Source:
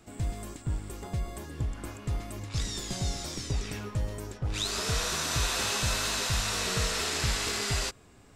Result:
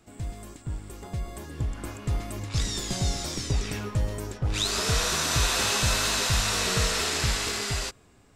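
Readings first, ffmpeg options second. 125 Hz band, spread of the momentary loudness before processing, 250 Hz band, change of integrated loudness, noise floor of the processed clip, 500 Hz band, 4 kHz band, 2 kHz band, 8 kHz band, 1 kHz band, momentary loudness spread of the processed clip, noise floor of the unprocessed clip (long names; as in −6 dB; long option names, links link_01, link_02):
+3.5 dB, 9 LU, +3.5 dB, +4.5 dB, −57 dBFS, +4.0 dB, +4.0 dB, +4.0 dB, +4.0 dB, +4.0 dB, 15 LU, −56 dBFS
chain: -af "dynaudnorm=framelen=430:gausssize=7:maxgain=7dB,volume=-2.5dB"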